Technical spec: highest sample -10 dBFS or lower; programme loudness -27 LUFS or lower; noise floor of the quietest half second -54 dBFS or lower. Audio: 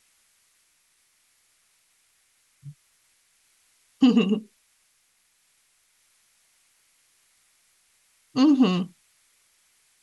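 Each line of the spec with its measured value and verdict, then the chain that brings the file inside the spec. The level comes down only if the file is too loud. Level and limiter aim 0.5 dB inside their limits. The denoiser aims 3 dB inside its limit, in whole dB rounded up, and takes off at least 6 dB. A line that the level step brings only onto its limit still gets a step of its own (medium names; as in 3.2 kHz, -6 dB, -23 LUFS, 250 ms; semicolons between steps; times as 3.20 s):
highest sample -7.5 dBFS: fail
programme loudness -22.0 LUFS: fail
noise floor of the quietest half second -67 dBFS: pass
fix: trim -5.5 dB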